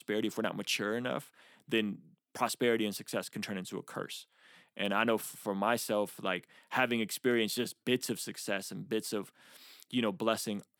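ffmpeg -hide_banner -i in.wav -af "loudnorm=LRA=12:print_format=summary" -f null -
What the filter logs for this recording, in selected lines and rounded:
Input Integrated:    -34.2 LUFS
Input True Peak:     -14.8 dBTP
Input LRA:             3.2 LU
Input Threshold:     -44.8 LUFS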